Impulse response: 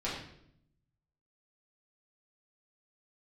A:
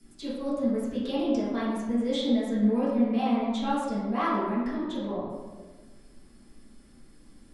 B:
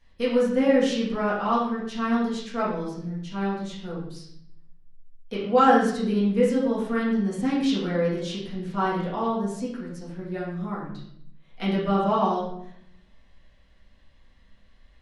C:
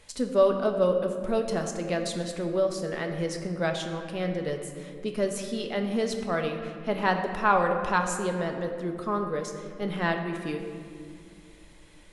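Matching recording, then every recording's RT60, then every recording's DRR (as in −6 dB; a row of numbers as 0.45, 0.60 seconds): B; 1.3, 0.70, 2.4 seconds; −12.0, −8.5, 3.5 decibels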